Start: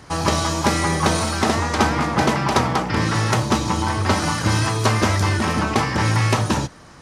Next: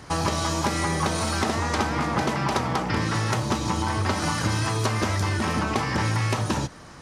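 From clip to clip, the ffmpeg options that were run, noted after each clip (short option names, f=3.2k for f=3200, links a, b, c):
-af "acompressor=threshold=-21dB:ratio=6"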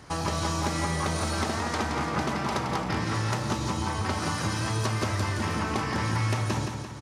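-af "aecho=1:1:171|342|513|684|855|1026:0.501|0.261|0.136|0.0705|0.0366|0.0191,volume=-5dB"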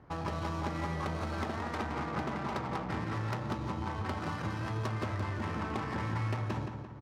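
-af "adynamicsmooth=sensitivity=3.5:basefreq=1.3k,volume=-6.5dB"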